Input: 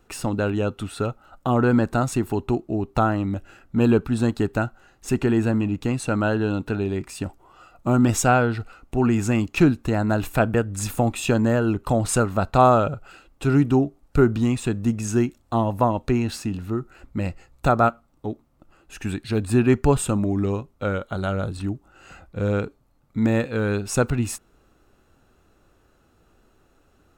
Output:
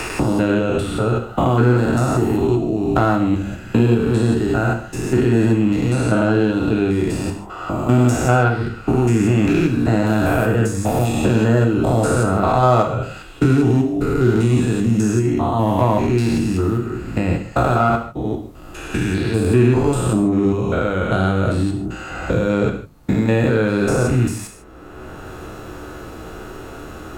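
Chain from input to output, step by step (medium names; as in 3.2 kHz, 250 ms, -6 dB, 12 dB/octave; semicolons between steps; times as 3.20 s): spectrogram pixelated in time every 200 ms; hum notches 50/100/150/200 Hz; in parallel at -7 dB: overload inside the chain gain 21 dB; on the sum: gated-style reverb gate 180 ms falling, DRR 3 dB; three bands compressed up and down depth 70%; trim +3.5 dB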